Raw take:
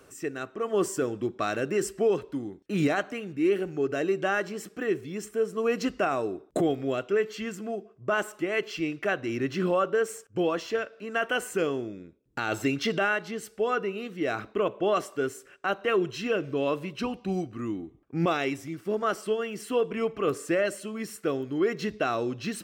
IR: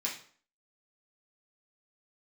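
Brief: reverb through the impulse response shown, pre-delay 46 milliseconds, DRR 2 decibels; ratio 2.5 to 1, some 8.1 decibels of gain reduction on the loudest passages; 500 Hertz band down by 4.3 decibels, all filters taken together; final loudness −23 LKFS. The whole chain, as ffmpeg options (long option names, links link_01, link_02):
-filter_complex "[0:a]equalizer=frequency=500:width_type=o:gain=-5.5,acompressor=threshold=-35dB:ratio=2.5,asplit=2[link_01][link_02];[1:a]atrim=start_sample=2205,adelay=46[link_03];[link_02][link_03]afir=irnorm=-1:irlink=0,volume=-5.5dB[link_04];[link_01][link_04]amix=inputs=2:normalize=0,volume=12.5dB"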